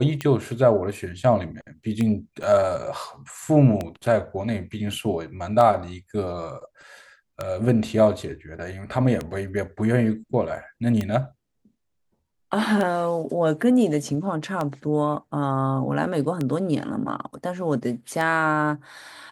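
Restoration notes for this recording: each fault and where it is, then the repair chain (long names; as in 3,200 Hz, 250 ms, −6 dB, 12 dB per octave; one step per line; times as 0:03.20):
scratch tick 33 1/3 rpm −13 dBFS
0:02.43–0:02.44: drop-out 5.9 ms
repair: click removal
repair the gap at 0:02.43, 5.9 ms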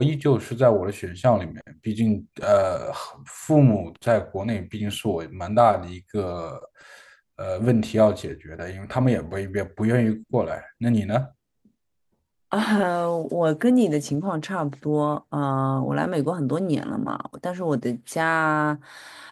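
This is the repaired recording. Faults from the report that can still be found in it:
none of them is left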